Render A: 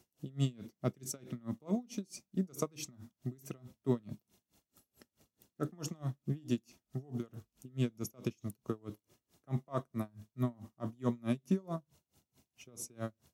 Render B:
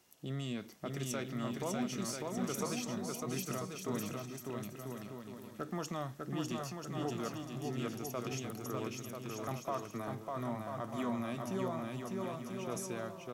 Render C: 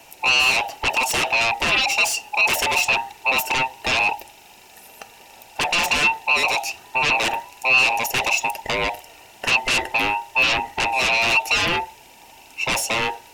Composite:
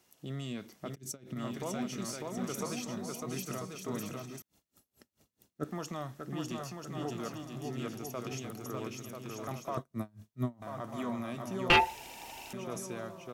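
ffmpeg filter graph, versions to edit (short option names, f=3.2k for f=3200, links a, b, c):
-filter_complex "[0:a]asplit=3[a][b][c];[1:a]asplit=5[d][e][f][g][h];[d]atrim=end=0.96[i];[a]atrim=start=0.94:end=1.37[j];[e]atrim=start=1.35:end=4.422[k];[b]atrim=start=4.418:end=5.642[l];[f]atrim=start=5.638:end=9.772[m];[c]atrim=start=9.768:end=10.622[n];[g]atrim=start=10.618:end=11.702[o];[2:a]atrim=start=11.698:end=12.532[p];[h]atrim=start=12.528[q];[i][j]acrossfade=d=0.02:c1=tri:c2=tri[r];[r][k]acrossfade=d=0.02:c1=tri:c2=tri[s];[s][l]acrossfade=d=0.004:c1=hsin:c2=hsin[t];[t][m]acrossfade=d=0.004:c1=hsin:c2=hsin[u];[u][n]acrossfade=d=0.004:c1=hsin:c2=hsin[v];[v][o]acrossfade=d=0.004:c1=hsin:c2=hsin[w];[w][p]acrossfade=d=0.004:c1=hsin:c2=hsin[x];[x][q]acrossfade=d=0.004:c1=hsin:c2=hsin"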